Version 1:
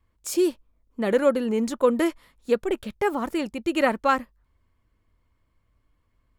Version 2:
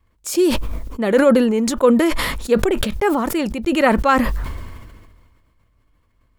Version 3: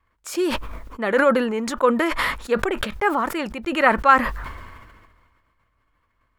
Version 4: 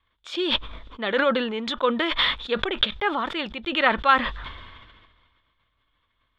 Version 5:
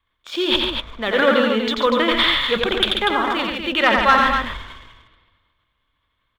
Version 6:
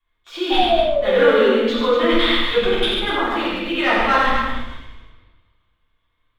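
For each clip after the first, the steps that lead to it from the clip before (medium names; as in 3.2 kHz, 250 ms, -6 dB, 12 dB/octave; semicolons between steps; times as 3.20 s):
decay stretcher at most 34 dB/s; trim +5 dB
peaking EQ 1.4 kHz +13 dB 2.3 oct; trim -9.5 dB
resonant low-pass 3.5 kHz, resonance Q 11; trim -5 dB
waveshaping leveller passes 1; on a send: loudspeakers at several distances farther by 30 m -4 dB, 48 m -7 dB, 83 m -7 dB
painted sound fall, 0.50–1.53 s, 380–790 Hz -17 dBFS; simulated room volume 160 m³, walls mixed, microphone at 3.4 m; trim -12.5 dB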